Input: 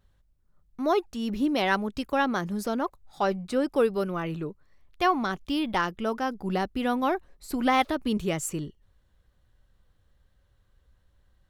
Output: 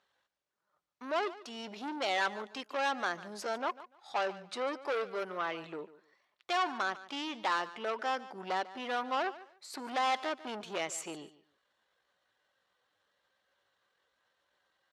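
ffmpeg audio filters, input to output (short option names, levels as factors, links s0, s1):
-af "asoftclip=type=tanh:threshold=0.0398,atempo=0.77,highpass=610,lowpass=5900,aecho=1:1:146|292:0.141|0.0283,volume=1.33"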